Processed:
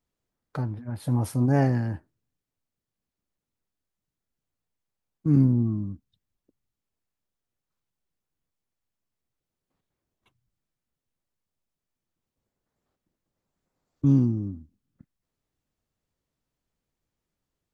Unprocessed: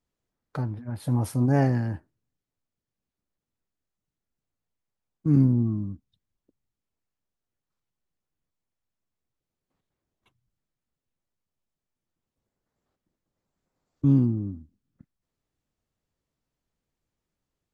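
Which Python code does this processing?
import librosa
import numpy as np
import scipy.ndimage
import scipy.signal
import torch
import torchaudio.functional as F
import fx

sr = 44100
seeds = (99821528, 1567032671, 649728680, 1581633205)

y = fx.peak_eq(x, sr, hz=5800.0, db=14.0, octaves=0.3, at=(14.06, 14.48))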